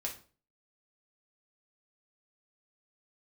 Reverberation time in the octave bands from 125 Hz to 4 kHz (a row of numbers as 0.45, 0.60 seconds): 0.45, 0.45, 0.40, 0.35, 0.30, 0.30 seconds